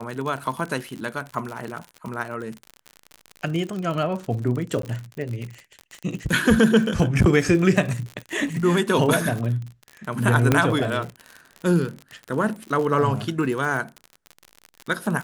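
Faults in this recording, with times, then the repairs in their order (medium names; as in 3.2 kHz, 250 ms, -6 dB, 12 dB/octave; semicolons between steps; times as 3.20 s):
crackle 54 per s -28 dBFS
4.82–4.83 s: dropout 13 ms
10.52 s: pop -4 dBFS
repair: de-click; interpolate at 4.82 s, 13 ms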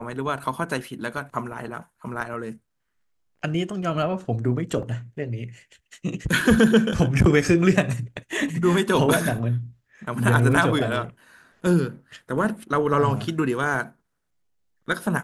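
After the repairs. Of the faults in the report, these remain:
10.52 s: pop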